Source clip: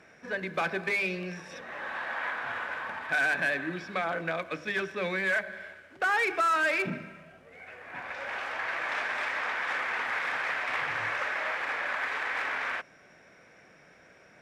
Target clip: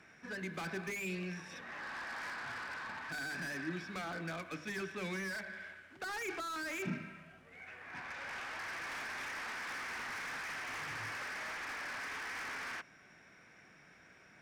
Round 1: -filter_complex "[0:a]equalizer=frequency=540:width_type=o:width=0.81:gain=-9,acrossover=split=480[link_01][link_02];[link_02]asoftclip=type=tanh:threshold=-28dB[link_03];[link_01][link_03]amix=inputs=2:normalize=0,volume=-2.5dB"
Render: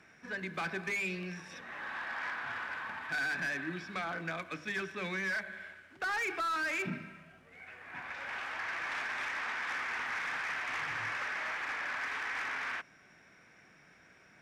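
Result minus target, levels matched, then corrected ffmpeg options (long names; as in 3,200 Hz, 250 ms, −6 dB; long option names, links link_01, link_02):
soft clipping: distortion −8 dB
-filter_complex "[0:a]equalizer=frequency=540:width_type=o:width=0.81:gain=-9,acrossover=split=480[link_01][link_02];[link_02]asoftclip=type=tanh:threshold=-38dB[link_03];[link_01][link_03]amix=inputs=2:normalize=0,volume=-2.5dB"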